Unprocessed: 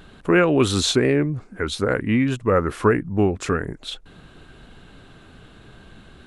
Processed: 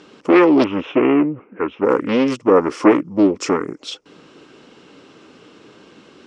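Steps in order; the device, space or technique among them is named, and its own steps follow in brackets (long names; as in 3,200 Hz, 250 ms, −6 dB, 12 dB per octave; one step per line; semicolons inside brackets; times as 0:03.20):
full-range speaker at full volume (highs frequency-modulated by the lows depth 0.85 ms; loudspeaker in its box 290–7,400 Hz, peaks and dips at 300 Hz +5 dB, 490 Hz +4 dB, 700 Hz −8 dB, 1,600 Hz −9 dB, 3,800 Hz −8 dB, 5,400 Hz +9 dB)
0:00.64–0:01.84: elliptic low-pass filter 2,800 Hz, stop band 40 dB
level +5.5 dB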